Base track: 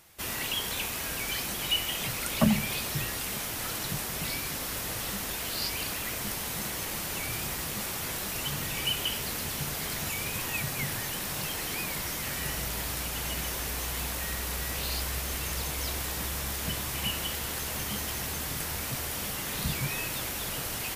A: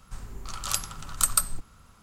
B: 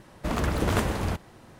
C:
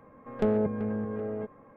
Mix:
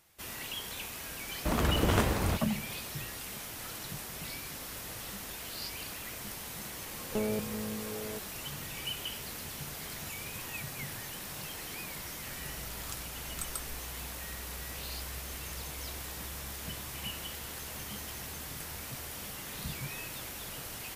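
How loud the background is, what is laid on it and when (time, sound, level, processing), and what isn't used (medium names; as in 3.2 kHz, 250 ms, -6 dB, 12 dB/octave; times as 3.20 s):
base track -8 dB
1.21 s: add B -2 dB
6.73 s: add C -7 dB
12.18 s: add A -17 dB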